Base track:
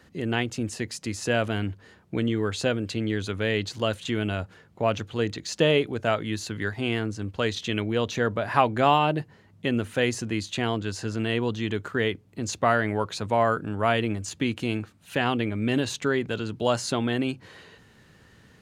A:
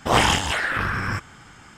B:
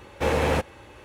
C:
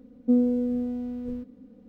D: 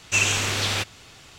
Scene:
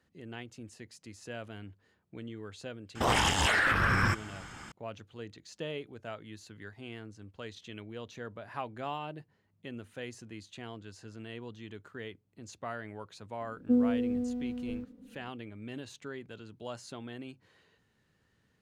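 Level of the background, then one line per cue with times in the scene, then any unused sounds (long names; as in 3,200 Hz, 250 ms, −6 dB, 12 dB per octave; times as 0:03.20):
base track −17.5 dB
0:02.95: mix in A −16 dB + boost into a limiter +16 dB
0:13.41: mix in C −4.5 dB
not used: B, D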